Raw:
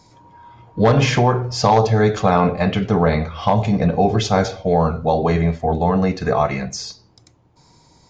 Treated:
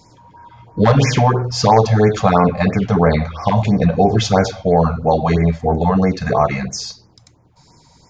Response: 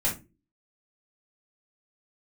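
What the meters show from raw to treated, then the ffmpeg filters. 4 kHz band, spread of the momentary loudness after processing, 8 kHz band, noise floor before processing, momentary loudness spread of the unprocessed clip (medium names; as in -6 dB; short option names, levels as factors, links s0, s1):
+1.5 dB, 5 LU, no reading, -54 dBFS, 6 LU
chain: -af "afftfilt=real='re*(1-between(b*sr/1024,300*pow(3600/300,0.5+0.5*sin(2*PI*3*pts/sr))/1.41,300*pow(3600/300,0.5+0.5*sin(2*PI*3*pts/sr))*1.41))':imag='im*(1-between(b*sr/1024,300*pow(3600/300,0.5+0.5*sin(2*PI*3*pts/sr))/1.41,300*pow(3600/300,0.5+0.5*sin(2*PI*3*pts/sr))*1.41))':win_size=1024:overlap=0.75,volume=1.41"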